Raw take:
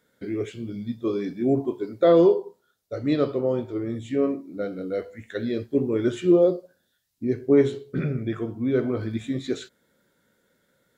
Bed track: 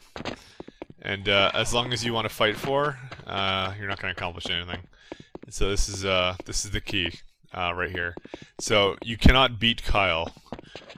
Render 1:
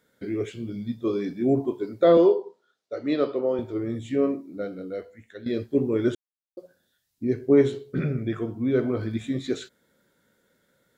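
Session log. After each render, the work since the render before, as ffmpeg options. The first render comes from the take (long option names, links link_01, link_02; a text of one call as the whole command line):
ffmpeg -i in.wav -filter_complex "[0:a]asettb=1/sr,asplit=3[link_01][link_02][link_03];[link_01]atrim=end=2.174[link_04];[link_02]atrim=start=2.17:end=3.59,asetpts=PTS-STARTPTS,afade=type=in:duration=0.004:curve=qsin,afade=type=out:start_time=1.416:duration=0.004:curve=qsin,highpass=270,lowpass=5400[link_05];[link_03]atrim=start=3.586[link_06];[link_04][link_05]acrossfade=duration=0.004:curve1=hsin:curve2=qsin[link_07];[link_07][link_06]acrossfade=duration=0.004:curve1=qsin:curve2=hsin,asplit=4[link_08][link_09][link_10][link_11];[link_08]atrim=end=5.46,asetpts=PTS-STARTPTS,afade=type=out:start_time=4.29:duration=1.17:silence=0.223872[link_12];[link_09]atrim=start=5.46:end=6.15,asetpts=PTS-STARTPTS,afade=type=in:duration=0.004:curve=hsin:silence=0.223872,afade=type=out:start_time=0.686:duration=0.004:curve=hsin[link_13];[link_10]atrim=start=6.15:end=6.57,asetpts=PTS-STARTPTS,volume=0[link_14];[link_11]atrim=start=6.57,asetpts=PTS-STARTPTS,afade=type=in:duration=0.004:curve=hsin[link_15];[link_12][link_13][link_14][link_15]concat=n=4:v=0:a=1" out.wav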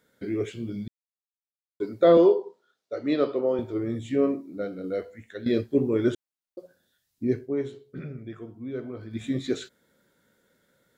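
ffmpeg -i in.wav -filter_complex "[0:a]asplit=7[link_01][link_02][link_03][link_04][link_05][link_06][link_07];[link_01]atrim=end=0.88,asetpts=PTS-STARTPTS,afade=type=out:start_time=0.876:duration=0.004:curve=hsin[link_08];[link_02]atrim=start=0.88:end=1.8,asetpts=PTS-STARTPTS,volume=0[link_09];[link_03]atrim=start=1.8:end=4.842,asetpts=PTS-STARTPTS,afade=type=in:duration=0.004:curve=hsin[link_10];[link_04]atrim=start=4.838:end=5.612,asetpts=PTS-STARTPTS,volume=3.5dB[link_11];[link_05]atrim=start=5.608:end=7.49,asetpts=PTS-STARTPTS,afade=type=out:start_time=1.742:duration=0.14:silence=0.281838[link_12];[link_06]atrim=start=7.49:end=9.1,asetpts=PTS-STARTPTS,volume=-11dB[link_13];[link_07]atrim=start=9.1,asetpts=PTS-STARTPTS,afade=type=in:duration=0.14:silence=0.281838[link_14];[link_08][link_09][link_10]concat=n=3:v=0:a=1[link_15];[link_15][link_11]acrossfade=duration=0.004:curve1=hsin:curve2=hsin[link_16];[link_12][link_13][link_14]concat=n=3:v=0:a=1[link_17];[link_16][link_17]acrossfade=duration=0.004:curve1=hsin:curve2=hsin" out.wav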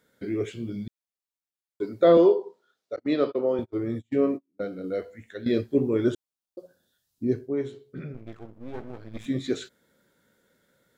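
ffmpeg -i in.wav -filter_complex "[0:a]asettb=1/sr,asplit=3[link_01][link_02][link_03];[link_01]atrim=end=2.964[link_04];[link_02]atrim=start=2.96:end=4.67,asetpts=PTS-STARTPTS,afade=type=in:duration=0.004:curve=qsin,afade=type=out:start_time=1.706:duration=0.004:curve=qsin,agate=range=-35dB:threshold=-33dB:ratio=16:release=100:detection=peak[link_05];[link_03]atrim=start=4.666[link_06];[link_04][link_05]acrossfade=duration=0.004:curve1=hsin:curve2=qsin[link_07];[link_07][link_06]acrossfade=duration=0.004:curve1=qsin:curve2=hsin,asettb=1/sr,asplit=3[link_08][link_09][link_10];[link_08]atrim=end=6.044[link_11];[link_09]atrim=start=6.04:end=7.54,asetpts=PTS-STARTPTS,afade=type=in:duration=0.004:curve=qsin,afade=type=out:start_time=1.496:duration=0.004:curve=qsin,equalizer=frequency=2100:width_type=o:width=0.62:gain=-7.5[link_12];[link_10]atrim=start=7.536[link_13];[link_11][link_12]acrossfade=duration=0.004:curve1=hsin:curve2=qsin[link_14];[link_14][link_13]acrossfade=duration=0.004:curve1=qsin:curve2=hsin,asettb=1/sr,asplit=3[link_15][link_16][link_17];[link_15]atrim=end=8.144[link_18];[link_16]atrim=start=8.14:end=9.26,asetpts=PTS-STARTPTS,afade=type=in:duration=0.004:curve=qsin,afade=type=out:start_time=1.116:duration=0.004:curve=qsin,aeval=exprs='max(val(0),0)':channel_layout=same[link_19];[link_17]atrim=start=9.256[link_20];[link_18][link_19]acrossfade=duration=0.004:curve1=hsin:curve2=qsin[link_21];[link_21][link_20]acrossfade=duration=0.004:curve1=qsin:curve2=hsin" out.wav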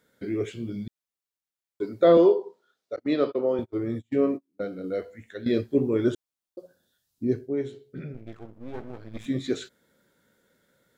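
ffmpeg -i in.wav -filter_complex "[0:a]asettb=1/sr,asplit=3[link_01][link_02][link_03];[link_01]atrim=end=7.374[link_04];[link_02]atrim=start=7.37:end=8.33,asetpts=PTS-STARTPTS,afade=type=in:duration=0.004:curve=qsin,afade=type=out:start_time=0.956:duration=0.004:curve=qsin,equalizer=frequency=1100:width_type=o:width=0.39:gain=-9.5[link_05];[link_03]atrim=start=8.326[link_06];[link_04][link_05]acrossfade=duration=0.004:curve1=hsin:curve2=qsin[link_07];[link_07][link_06]acrossfade=duration=0.004:curve1=qsin:curve2=hsin" out.wav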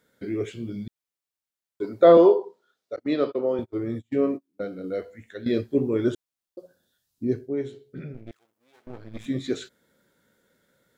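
ffmpeg -i in.wav -filter_complex "[0:a]asettb=1/sr,asplit=3[link_01][link_02][link_03];[link_01]atrim=end=1.844[link_04];[link_02]atrim=start=1.84:end=2.45,asetpts=PTS-STARTPTS,afade=type=in:duration=0.004:curve=qsin,afade=type=out:start_time=0.606:duration=0.004:curve=qsin,equalizer=frequency=860:width_type=o:width=1.6:gain=6.5[link_05];[link_03]atrim=start=2.446[link_06];[link_04][link_05]acrossfade=duration=0.004:curve1=hsin:curve2=qsin[link_07];[link_07][link_06]acrossfade=duration=0.004:curve1=qsin:curve2=hsin,asettb=1/sr,asplit=3[link_08][link_09][link_10];[link_08]atrim=end=8.314[link_11];[link_09]atrim=start=8.31:end=8.87,asetpts=PTS-STARTPTS,afade=type=in:duration=0.004:curve=qsin,afade=type=out:start_time=0.556:duration=0.004:curve=qsin,aderivative[link_12];[link_10]atrim=start=8.866[link_13];[link_11][link_12]acrossfade=duration=0.004:curve1=hsin:curve2=qsin[link_14];[link_14][link_13]acrossfade=duration=0.004:curve1=qsin:curve2=hsin" out.wav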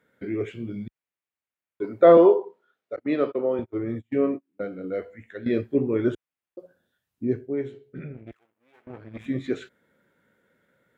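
ffmpeg -i in.wav -af "highpass=52,highshelf=frequency=3300:width_type=q:width=1.5:gain=-9.5" out.wav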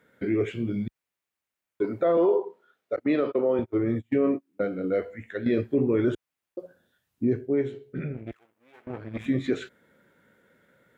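ffmpeg -i in.wav -filter_complex "[0:a]asplit=2[link_01][link_02];[link_02]acompressor=threshold=-28dB:ratio=6,volume=-2.5dB[link_03];[link_01][link_03]amix=inputs=2:normalize=0,alimiter=limit=-15dB:level=0:latency=1:release=22" out.wav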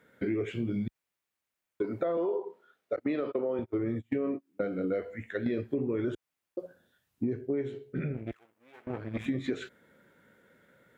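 ffmpeg -i in.wav -af "acompressor=threshold=-27dB:ratio=10" out.wav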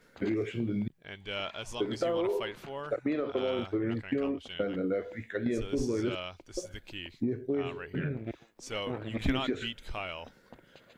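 ffmpeg -i in.wav -i bed.wav -filter_complex "[1:a]volume=-15.5dB[link_01];[0:a][link_01]amix=inputs=2:normalize=0" out.wav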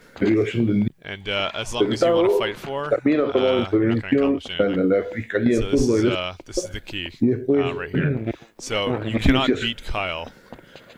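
ffmpeg -i in.wav -af "volume=12dB" out.wav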